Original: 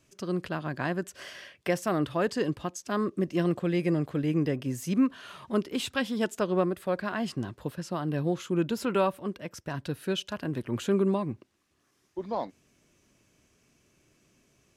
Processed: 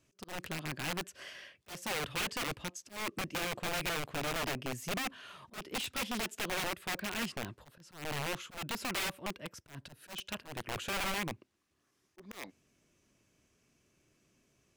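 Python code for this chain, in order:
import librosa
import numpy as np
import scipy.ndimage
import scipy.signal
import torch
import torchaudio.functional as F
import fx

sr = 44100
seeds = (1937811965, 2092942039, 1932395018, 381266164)

y = (np.mod(10.0 ** (25.0 / 20.0) * x + 1.0, 2.0) - 1.0) / 10.0 ** (25.0 / 20.0)
y = fx.auto_swell(y, sr, attack_ms=184.0)
y = fx.dynamic_eq(y, sr, hz=2500.0, q=1.7, threshold_db=-49.0, ratio=4.0, max_db=5)
y = y * 10.0 ** (-6.0 / 20.0)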